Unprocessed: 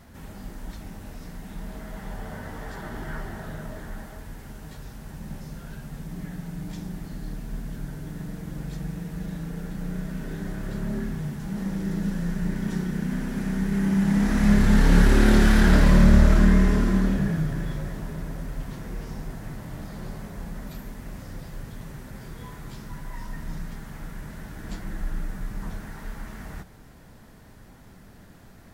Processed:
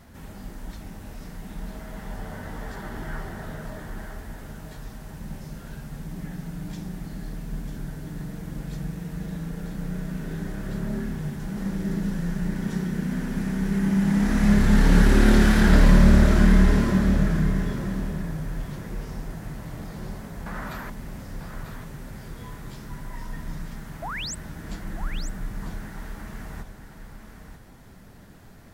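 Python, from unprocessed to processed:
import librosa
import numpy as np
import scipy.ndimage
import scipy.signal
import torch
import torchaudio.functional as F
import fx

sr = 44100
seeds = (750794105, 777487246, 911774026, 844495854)

y = fx.peak_eq(x, sr, hz=1300.0, db=15.0, octaves=1.9, at=(20.46, 20.9))
y = fx.spec_paint(y, sr, seeds[0], shape='rise', start_s=24.02, length_s=0.33, low_hz=590.0, high_hz=8600.0, level_db=-33.0)
y = y + 10.0 ** (-8.5 / 20.0) * np.pad(y, (int(945 * sr / 1000.0), 0))[:len(y)]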